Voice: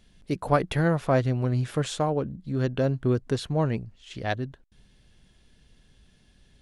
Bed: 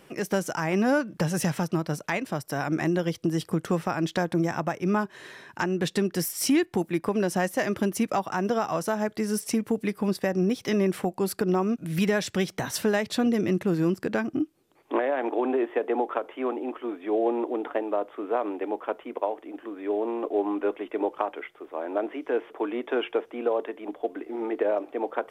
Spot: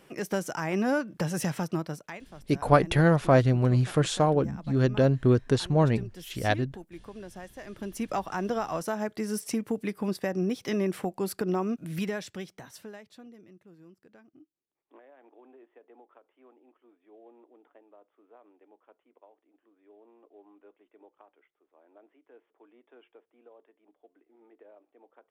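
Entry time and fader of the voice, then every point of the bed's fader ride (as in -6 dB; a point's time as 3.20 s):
2.20 s, +2.5 dB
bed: 1.81 s -3.5 dB
2.29 s -18 dB
7.60 s -18 dB
8.13 s -4 dB
11.83 s -4 dB
13.51 s -29.5 dB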